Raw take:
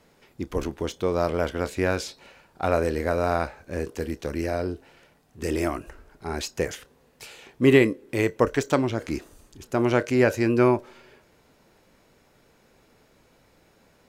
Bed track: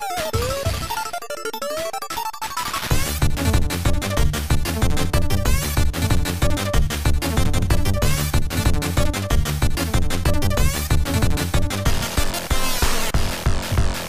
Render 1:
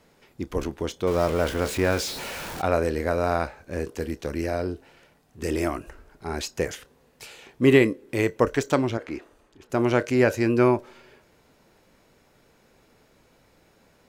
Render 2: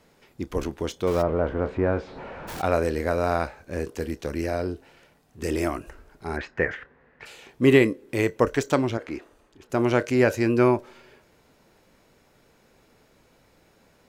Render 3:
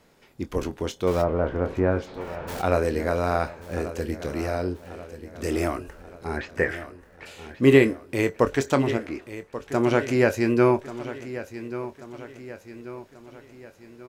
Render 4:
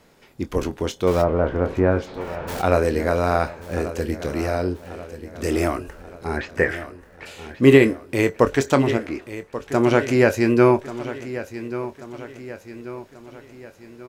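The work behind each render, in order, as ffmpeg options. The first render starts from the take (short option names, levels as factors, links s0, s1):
-filter_complex "[0:a]asettb=1/sr,asplit=3[s0][s1][s2];[s0]atrim=end=1.074[s3];[s1]atrim=start=1.07:end=2.62,asetpts=PTS-STARTPTS,afade=t=in:d=0.004:c=qsin,afade=t=out:st=1.546:d=0.004:c=qsin,aeval=exprs='val(0)+0.5*0.0335*sgn(val(0))':c=same[s4];[s2]atrim=start=2.616[s5];[s3][s4]acrossfade=d=0.004:c1=hsin:c2=qsin[s6];[s6][s5]acrossfade=d=0.004:c1=qsin:c2=hsin,asettb=1/sr,asplit=3[s7][s8][s9];[s7]atrim=end=8.974[s10];[s8]atrim=start=8.97:end=9.7,asetpts=PTS-STARTPTS,afade=t=in:d=0.004:c=qsin,afade=t=out:st=0.726:d=0.004:c=qsin,bass=f=250:g=-11,treble=f=4000:g=-15[s11];[s9]atrim=start=9.696[s12];[s10][s11]acrossfade=d=0.004:c1=hsin:c2=qsin[s13];[s13][s12]acrossfade=d=0.004:c1=qsin:c2=hsin"
-filter_complex "[0:a]asplit=3[s0][s1][s2];[s0]afade=t=out:st=1.21:d=0.02[s3];[s1]lowpass=1200,afade=t=in:st=1.21:d=0.02,afade=t=out:st=2.47:d=0.02[s4];[s2]afade=t=in:st=2.47:d=0.02[s5];[s3][s4][s5]amix=inputs=3:normalize=0,asplit=3[s6][s7][s8];[s6]afade=t=out:st=6.36:d=0.02[s9];[s7]lowpass=f=1800:t=q:w=3.6,afade=t=in:st=6.36:d=0.02,afade=t=out:st=7.25:d=0.02[s10];[s8]afade=t=in:st=7.25:d=0.02[s11];[s9][s10][s11]amix=inputs=3:normalize=0"
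-filter_complex "[0:a]asplit=2[s0][s1];[s1]adelay=22,volume=0.251[s2];[s0][s2]amix=inputs=2:normalize=0,aecho=1:1:1136|2272|3408|4544|5680:0.211|0.104|0.0507|0.0249|0.0122"
-af "volume=1.58,alimiter=limit=0.891:level=0:latency=1"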